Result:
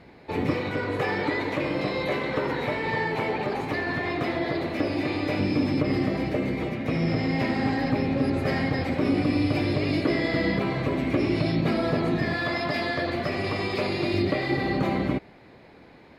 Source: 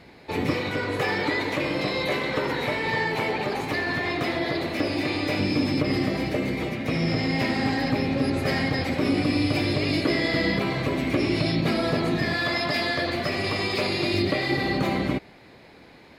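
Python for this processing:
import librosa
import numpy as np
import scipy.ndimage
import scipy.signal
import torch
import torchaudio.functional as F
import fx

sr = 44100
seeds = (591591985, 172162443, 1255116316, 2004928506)

y = fx.high_shelf(x, sr, hz=3000.0, db=-10.0)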